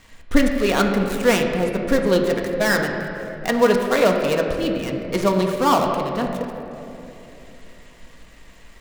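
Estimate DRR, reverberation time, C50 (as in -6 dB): 1.5 dB, 3.0 s, 4.0 dB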